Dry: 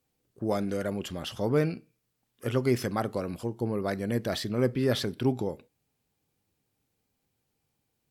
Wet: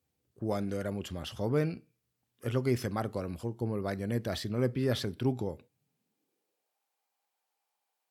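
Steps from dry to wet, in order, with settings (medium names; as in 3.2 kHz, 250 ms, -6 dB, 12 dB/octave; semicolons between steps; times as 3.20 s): high-pass sweep 73 Hz -> 810 Hz, 5.51–6.80 s; trim -4.5 dB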